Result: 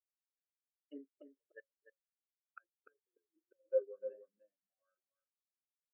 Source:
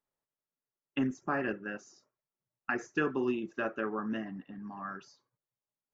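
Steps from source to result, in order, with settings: Doppler pass-by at 2.27, 19 m/s, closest 1.4 m; flipped gate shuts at -46 dBFS, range -27 dB; resonant high-pass 530 Hz, resonance Q 4.9; fixed phaser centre 2200 Hz, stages 4; on a send: echo 0.297 s -4.5 dB; on the sum: spectral expander 2.5:1; gain +17 dB

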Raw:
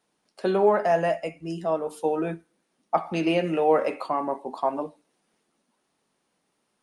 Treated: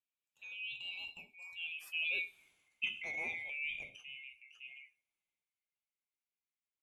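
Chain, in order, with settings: band-swap scrambler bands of 2000 Hz; Doppler pass-by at 2.4, 18 m/s, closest 2.1 m; transient shaper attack -4 dB, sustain +5 dB

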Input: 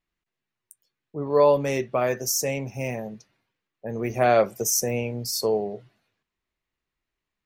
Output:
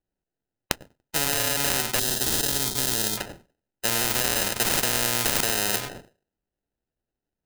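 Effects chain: compressor 2:1, threshold -28 dBFS, peak gain reduction 8.5 dB; expander -57 dBFS; thinning echo 96 ms, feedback 16%, high-pass 330 Hz, level -20.5 dB; sample-and-hold 39×; spectral gain 1.99–3.18, 470–3100 Hz -20 dB; maximiser +25.5 dB; spectral compressor 4:1; gain -1 dB

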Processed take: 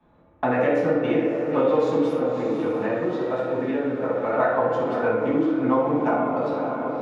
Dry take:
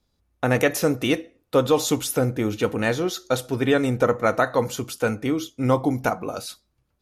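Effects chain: Wiener smoothing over 9 samples; high shelf 2800 Hz -12 dB; tape echo 61 ms, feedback 84%, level -6 dB, low-pass 3800 Hz; 2.12–4.33 compressor 2.5:1, threshold -30 dBFS, peak gain reduction 11 dB; HPF 640 Hz 6 dB/oct; tape spacing loss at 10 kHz 21 dB; diffused feedback echo 0.562 s, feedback 48%, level -11.5 dB; reverb RT60 0.60 s, pre-delay 5 ms, DRR -7.5 dB; three-band squash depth 70%; gain -6 dB

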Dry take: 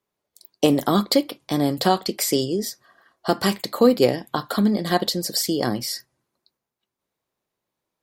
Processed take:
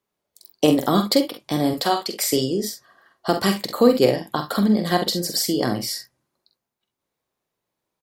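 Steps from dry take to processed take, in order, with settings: 1.73–2.33 HPF 540 Hz 6 dB/oct; on a send: early reflections 46 ms -7.5 dB, 65 ms -13.5 dB

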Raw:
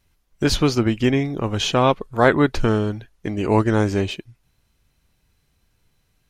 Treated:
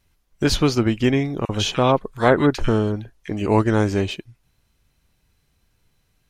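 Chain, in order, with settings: 1.45–3.46 bands offset in time highs, lows 40 ms, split 1600 Hz

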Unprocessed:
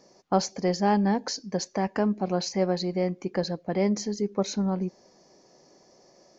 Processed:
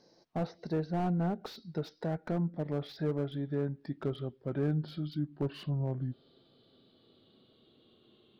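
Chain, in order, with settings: speed glide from 90% -> 62%; treble ducked by the level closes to 1700 Hz, closed at -22.5 dBFS; slew limiter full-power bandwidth 39 Hz; gain -6.5 dB

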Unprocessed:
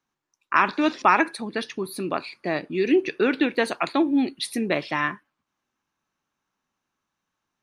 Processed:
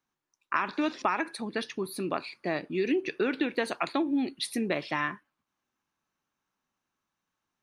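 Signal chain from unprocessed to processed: compressor 6:1, threshold -20 dBFS, peak gain reduction 8 dB; gain -3.5 dB

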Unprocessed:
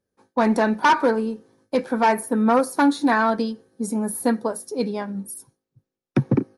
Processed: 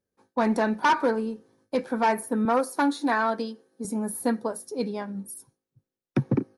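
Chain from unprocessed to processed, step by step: 2.45–3.85 HPF 250 Hz 12 dB/oct; gain -4.5 dB

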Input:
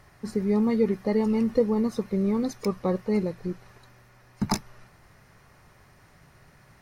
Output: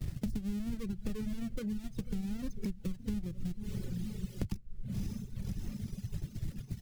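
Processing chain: half-waves squared off; passive tone stack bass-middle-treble 10-0-1; gate -60 dBFS, range -29 dB; low shelf 250 Hz +10 dB; diffused feedback echo 0.561 s, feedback 43%, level -14.5 dB; wow and flutter 28 cents; 0.77–2.99 flange 1.1 Hz, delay 5.1 ms, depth 1.7 ms, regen +46%; compressor 4:1, threshold -41 dBFS, peak gain reduction 16 dB; reverb removal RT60 1.3 s; three-band squash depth 100%; gain +9.5 dB

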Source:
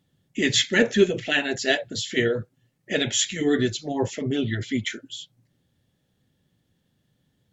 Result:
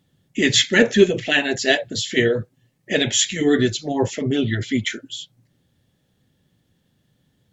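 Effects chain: 0.93–3.39 notch 1400 Hz, Q 12; gain +4.5 dB

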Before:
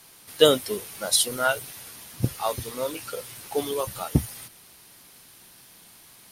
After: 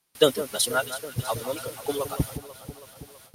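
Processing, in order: echo with dull and thin repeats by turns 0.307 s, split 1800 Hz, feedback 80%, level -11.5 dB; time stretch by phase-locked vocoder 0.53×; gate with hold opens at -38 dBFS

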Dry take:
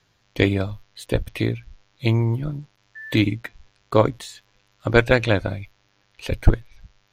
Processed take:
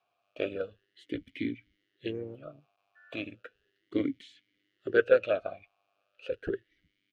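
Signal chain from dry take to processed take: harmoniser -4 st -16 dB, -3 st -10 dB; vowel sweep a-i 0.35 Hz

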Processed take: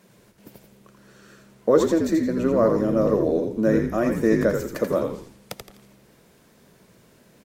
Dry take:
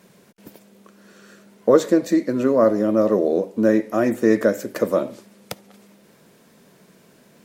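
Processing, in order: frequency-shifting echo 84 ms, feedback 35%, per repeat -71 Hz, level -5 dB; gain -3.5 dB

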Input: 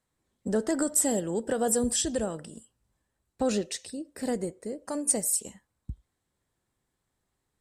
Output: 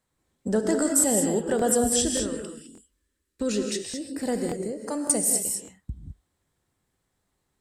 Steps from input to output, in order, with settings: 2.14–3.65 fixed phaser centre 310 Hz, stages 4; non-linear reverb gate 0.23 s rising, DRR 3.5 dB; crackling interface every 0.58 s, samples 1024, repeat, from 0.99; gain +2.5 dB

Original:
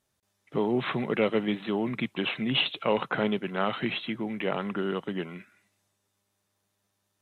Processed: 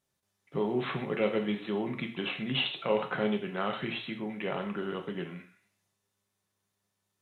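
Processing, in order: non-linear reverb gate 0.17 s falling, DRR 3.5 dB; gain -5.5 dB

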